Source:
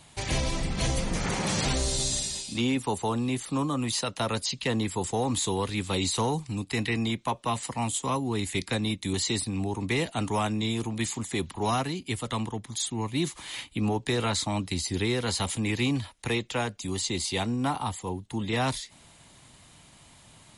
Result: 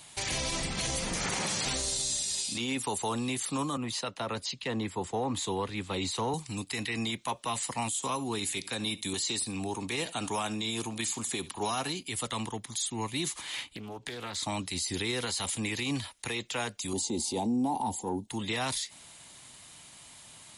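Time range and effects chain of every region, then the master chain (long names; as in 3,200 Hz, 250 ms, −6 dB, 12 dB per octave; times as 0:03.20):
0:03.77–0:06.34: low-pass filter 1,600 Hz 6 dB per octave + multiband upward and downward expander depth 40%
0:07.95–0:12.02: low-shelf EQ 61 Hz −11.5 dB + notch filter 2,000 Hz + single-tap delay 72 ms −21.5 dB
0:13.41–0:14.43: high-shelf EQ 4,500 Hz −7.5 dB + downward compressor 16 to 1, threshold −33 dBFS + highs frequency-modulated by the lows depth 0.41 ms
0:16.93–0:18.28: drawn EQ curve 160 Hz 0 dB, 220 Hz +11 dB, 610 Hz +2 dB, 890 Hz +7 dB, 1,300 Hz −28 dB, 2,200 Hz −16 dB, 6,500 Hz −6 dB + transient designer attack −5 dB, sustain +3 dB
whole clip: spectral tilt +2 dB per octave; brickwall limiter −22.5 dBFS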